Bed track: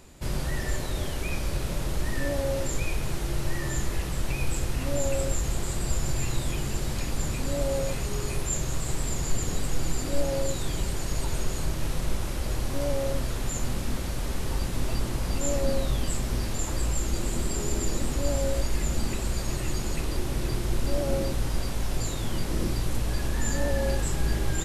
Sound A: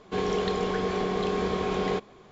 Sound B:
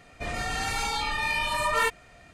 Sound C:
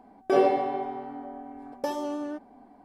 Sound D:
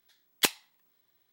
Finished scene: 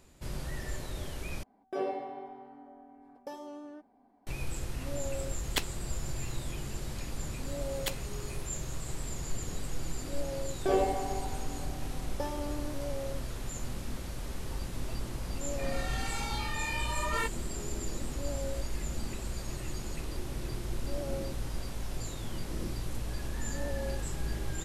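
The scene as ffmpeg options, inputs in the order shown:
ffmpeg -i bed.wav -i cue0.wav -i cue1.wav -i cue2.wav -i cue3.wav -filter_complex "[3:a]asplit=2[link_01][link_02];[4:a]asplit=2[link_03][link_04];[0:a]volume=-8.5dB[link_05];[link_03]highshelf=frequency=8900:gain=-8.5[link_06];[link_05]asplit=2[link_07][link_08];[link_07]atrim=end=1.434[link_09];[link_01]atrim=end=2.84,asetpts=PTS-STARTPTS,volume=-12.5dB[link_10];[link_08]atrim=start=4.266[link_11];[link_06]atrim=end=1.32,asetpts=PTS-STARTPTS,volume=-5.5dB,afade=type=in:duration=0.004:curve=hsin,afade=type=out:start_time=1.316:duration=0.004:curve=hsin,adelay=226233S[link_12];[link_04]atrim=end=1.32,asetpts=PTS-STARTPTS,volume=-11.5dB,afade=type=in:duration=0.004:curve=hsin,afade=type=out:start_time=1.316:duration=0.004:curve=hsin,adelay=7430[link_13];[link_02]atrim=end=2.84,asetpts=PTS-STARTPTS,volume=-6.5dB,afade=type=in:duration=0.004:curve=hsin,afade=type=out:start_time=2.836:duration=0.004:curve=hsin,adelay=10360[link_14];[2:a]atrim=end=2.33,asetpts=PTS-STARTPTS,volume=-8.5dB,afade=type=in:duration=0.004:curve=hsin,afade=type=out:start_time=2.326:duration=0.004:curve=hsin,adelay=15380[link_15];[link_09][link_10]acrossfade=duration=0.004:curve1=hsin:curve2=hsin[link_16];[link_16][link_11]acrossfade=duration=0.004:curve1=hsin:curve2=hsin[link_17];[link_17][link_12][link_13][link_14][link_15]amix=inputs=5:normalize=0" out.wav

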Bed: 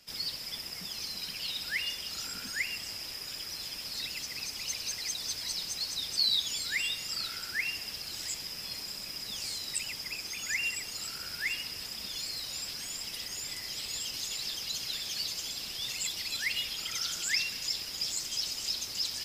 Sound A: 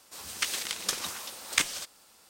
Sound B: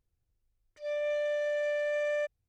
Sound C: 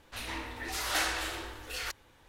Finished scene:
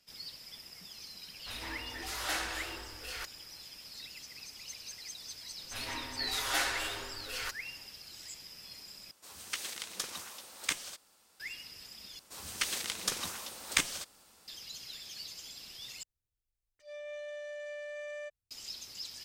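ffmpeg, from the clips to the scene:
ffmpeg -i bed.wav -i cue0.wav -i cue1.wav -i cue2.wav -filter_complex "[3:a]asplit=2[link_01][link_02];[1:a]asplit=2[link_03][link_04];[0:a]volume=-10dB[link_05];[link_02]aecho=1:1:7.4:0.73[link_06];[link_04]lowshelf=frequency=230:gain=6.5[link_07];[2:a]highshelf=frequency=2400:gain=9[link_08];[link_05]asplit=4[link_09][link_10][link_11][link_12];[link_09]atrim=end=9.114[link_13];[link_03]atrim=end=2.29,asetpts=PTS-STARTPTS,volume=-7.5dB[link_14];[link_10]atrim=start=11.396:end=12.194[link_15];[link_07]atrim=end=2.29,asetpts=PTS-STARTPTS,volume=-3dB[link_16];[link_11]atrim=start=14.476:end=16.034[link_17];[link_08]atrim=end=2.48,asetpts=PTS-STARTPTS,volume=-12.5dB[link_18];[link_12]atrim=start=18.506[link_19];[link_01]atrim=end=2.28,asetpts=PTS-STARTPTS,volume=-4.5dB,afade=type=in:duration=0.004:curve=hsin,afade=type=out:start_time=2.276:duration=0.004:curve=hsin,adelay=1340[link_20];[link_06]atrim=end=2.28,asetpts=PTS-STARTPTS,volume=-3dB,afade=type=in:duration=0.004:curve=hsin,afade=type=out:start_time=2.276:duration=0.004:curve=hsin,adelay=5590[link_21];[link_13][link_14]acrossfade=duration=0.004:curve1=hsin:curve2=hsin[link_22];[link_22][link_15]acrossfade=duration=0.004:curve1=hsin:curve2=hsin[link_23];[link_23][link_16]acrossfade=duration=0.004:curve1=hsin:curve2=hsin[link_24];[link_24][link_17]acrossfade=duration=0.004:curve1=hsin:curve2=hsin[link_25];[link_25][link_18]acrossfade=duration=0.004:curve1=hsin:curve2=hsin[link_26];[link_26][link_19]acrossfade=duration=0.004:curve1=hsin:curve2=hsin[link_27];[link_27][link_20][link_21]amix=inputs=3:normalize=0" out.wav

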